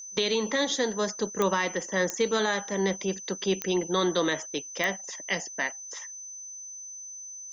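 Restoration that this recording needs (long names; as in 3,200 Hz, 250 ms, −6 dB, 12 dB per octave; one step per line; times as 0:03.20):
click removal
notch filter 6,100 Hz, Q 30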